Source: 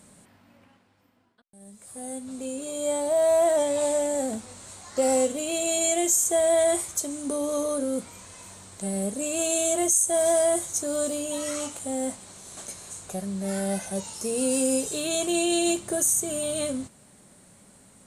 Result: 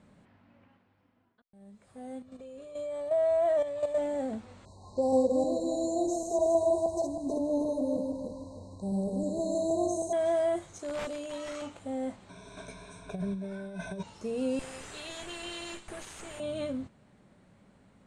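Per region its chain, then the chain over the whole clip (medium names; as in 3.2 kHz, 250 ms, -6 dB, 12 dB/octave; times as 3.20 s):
2.22–3.98 s: comb 1.7 ms, depth 55% + level held to a coarse grid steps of 10 dB
4.65–10.13 s: backward echo that repeats 158 ms, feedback 57%, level -2.5 dB + brick-wall FIR band-stop 1.1–3.8 kHz + bass shelf 88 Hz +6 dB
10.79–11.62 s: tone controls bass -12 dB, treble +5 dB + integer overflow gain 19 dB
12.29–14.03 s: rippled EQ curve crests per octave 1.6, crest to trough 16 dB + compressor with a negative ratio -30 dBFS, ratio -0.5
14.59–16.40 s: tilt EQ +4.5 dB/octave + valve stage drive 24 dB, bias 0.6
whole clip: low-pass 2.9 kHz 12 dB/octave; bass shelf 190 Hz +4 dB; trim -5.5 dB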